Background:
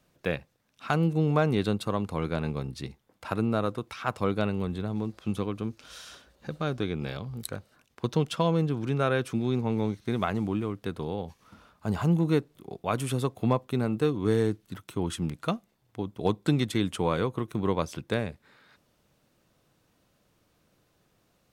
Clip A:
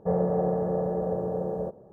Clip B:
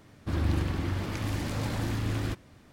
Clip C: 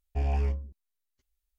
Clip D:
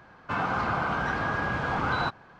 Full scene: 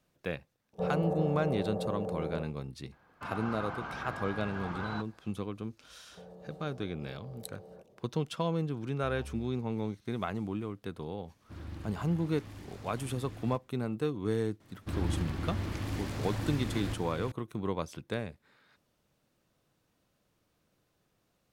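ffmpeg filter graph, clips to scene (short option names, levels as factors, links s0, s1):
-filter_complex "[1:a]asplit=2[s0][s1];[2:a]asplit=2[s2][s3];[0:a]volume=0.473[s4];[s1]acompressor=threshold=0.0158:ratio=6:attack=3.2:release=140:knee=1:detection=peak[s5];[3:a]asoftclip=type=tanh:threshold=0.0355[s6];[s3]aecho=1:1:537:0.473[s7];[s0]atrim=end=1.92,asetpts=PTS-STARTPTS,volume=0.447,afade=t=in:d=0.004:c=hsin,afade=t=out:st=1.916:d=0.004:c=hsin,adelay=730[s8];[4:a]atrim=end=2.39,asetpts=PTS-STARTPTS,volume=0.251,afade=t=in:d=0.004:c=hsin,afade=t=out:st=2.386:d=0.004:c=hsin,adelay=2920[s9];[s5]atrim=end=1.92,asetpts=PTS-STARTPTS,volume=0.251,afade=t=in:d=0.004:c=hsin,afade=t=out:st=1.916:d=0.004:c=hsin,adelay=6120[s10];[s6]atrim=end=1.58,asetpts=PTS-STARTPTS,volume=0.237,afade=t=in:d=0.004:c=hsin,afade=t=out:st=1.576:d=0.004:c=hsin,adelay=8880[s11];[s2]atrim=end=2.72,asetpts=PTS-STARTPTS,volume=0.158,afade=t=in:d=0.004:c=hsin,afade=t=out:st=2.716:d=0.004:c=hsin,adelay=11230[s12];[s7]atrim=end=2.72,asetpts=PTS-STARTPTS,volume=0.531,afade=t=in:d=0.004:c=hsin,afade=t=out:st=2.716:d=0.004:c=hsin,adelay=643860S[s13];[s4][s8][s9][s10][s11][s12][s13]amix=inputs=7:normalize=0"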